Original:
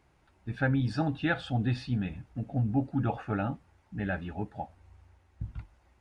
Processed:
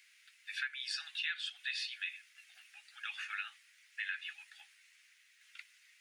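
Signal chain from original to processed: steep high-pass 1900 Hz 36 dB/oct; compressor 5:1, threshold -49 dBFS, peak gain reduction 14.5 dB; gain +13 dB

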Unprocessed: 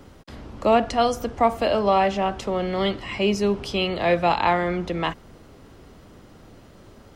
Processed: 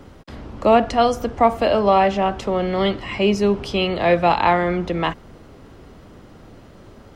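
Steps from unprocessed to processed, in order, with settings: high shelf 4200 Hz -6 dB; gain +4 dB

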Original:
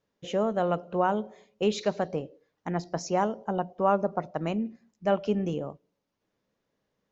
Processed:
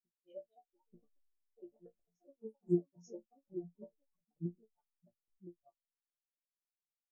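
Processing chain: notches 60/120/180/240/300 Hz; reverb removal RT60 1.1 s; auto swell 0.111 s; in parallel at -2.5 dB: compressor 6:1, threshold -38 dBFS, peak gain reduction 17 dB; on the sum: flipped gate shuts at -23 dBFS, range -33 dB; resonator bank A#2 fifth, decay 0.35 s; backlash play -53.5 dBFS; on a send: reverse echo 0.887 s -11.5 dB; on the sum: echoes that change speed 0.286 s, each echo +4 st, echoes 3, each echo -6 dB; spectral expander 2.5:1; gain +13 dB

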